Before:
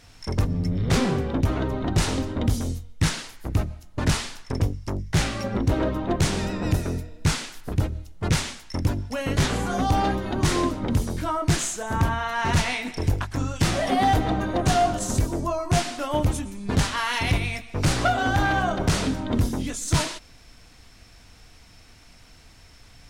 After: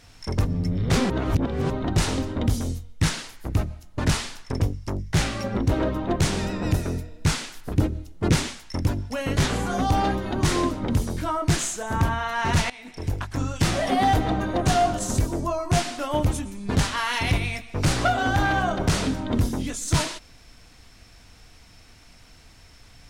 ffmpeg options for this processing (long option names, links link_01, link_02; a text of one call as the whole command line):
ffmpeg -i in.wav -filter_complex "[0:a]asettb=1/sr,asplit=3[link_01][link_02][link_03];[link_01]atrim=end=7.764[link_04];[link_02]atrim=start=7.76:end=8.48,asetpts=PTS-STARTPTS,afade=type=in:duration=0.004:curve=qsin,afade=type=out:start_time=0.716:duration=0.004:curve=qsin,equalizer=frequency=300:width_type=o:width=1.2:gain=8.5[link_05];[link_03]atrim=start=8.476[link_06];[link_04][link_05]acrossfade=duration=0.004:curve1=hsin:curve2=qsin[link_07];[link_07][link_06]acrossfade=duration=0.004:curve1=qsin:curve2=hsin,asplit=4[link_08][link_09][link_10][link_11];[link_08]atrim=end=1.102[link_12];[link_09]atrim=start=1.098:end=1.702,asetpts=PTS-STARTPTS,areverse[link_13];[link_10]atrim=start=1.698:end=12.7,asetpts=PTS-STARTPTS,afade=type=out:start_time=10.998:duration=0.004:curve=hsin:silence=0.1[link_14];[link_11]atrim=start=12.7,asetpts=PTS-STARTPTS,afade=type=in:duration=0.7:silence=0.1[link_15];[link_12][link_13]acrossfade=duration=0.004:curve1=hsin:curve2=hsin[link_16];[link_14][link_15]concat=n=2:v=0:a=1[link_17];[link_16][link_17]acrossfade=duration=0.004:curve1=hsin:curve2=hsin" out.wav